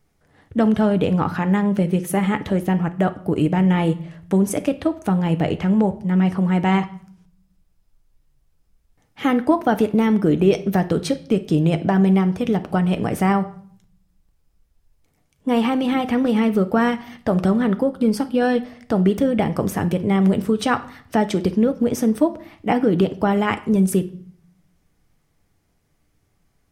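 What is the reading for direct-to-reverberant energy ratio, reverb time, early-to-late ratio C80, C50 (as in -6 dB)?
9.0 dB, 0.55 s, 20.5 dB, 15.5 dB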